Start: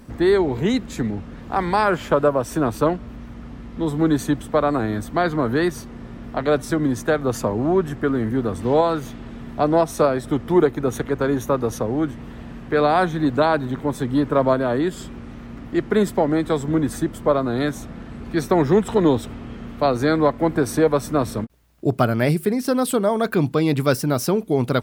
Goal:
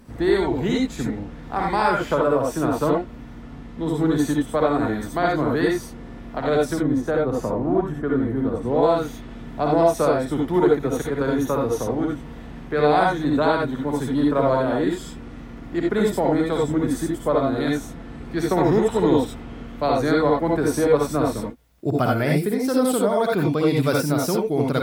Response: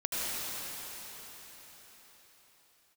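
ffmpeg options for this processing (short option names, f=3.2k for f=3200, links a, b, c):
-filter_complex "[0:a]asettb=1/sr,asplit=3[a][b][c];[a]atrim=end=6.734[d];[b]atrim=start=6.73:end=8.83,asetpts=PTS-STARTPTS,afade=t=in:d=0.004:c=qsin,afade=t=out:st=2.096:d=0.004:c=qsin,highshelf=f=2.1k:g=-11[e];[c]atrim=start=8.826[f];[d][e]acrossfade=d=0.004:c1=hsin:c2=qsin[g];[g][f]acrossfade=d=0.004:c1=qsin:c2=hsin[h];[1:a]atrim=start_sample=2205,afade=t=out:st=0.18:d=0.01,atrim=end_sample=8379,asetrate=61740,aresample=44100[i];[h][i]afir=irnorm=-1:irlink=0"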